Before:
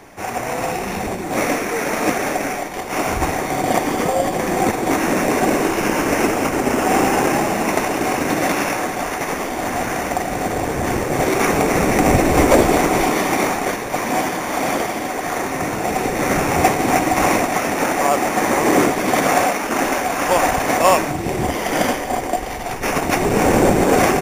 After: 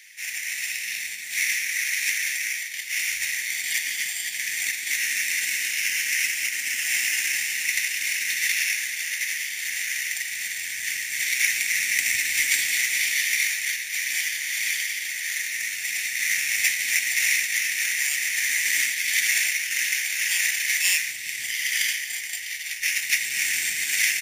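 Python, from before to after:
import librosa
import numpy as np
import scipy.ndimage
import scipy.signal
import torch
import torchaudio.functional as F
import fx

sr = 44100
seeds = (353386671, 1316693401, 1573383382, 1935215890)

y = scipy.signal.sosfilt(scipy.signal.ellip(4, 1.0, 40, 1900.0, 'highpass', fs=sr, output='sos'), x)
y = F.gain(torch.from_numpy(y), 3.0).numpy()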